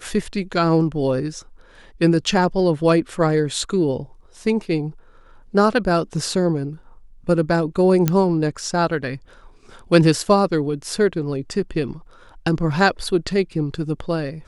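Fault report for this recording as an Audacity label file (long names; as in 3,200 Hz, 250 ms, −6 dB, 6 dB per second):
8.080000	8.080000	click −4 dBFS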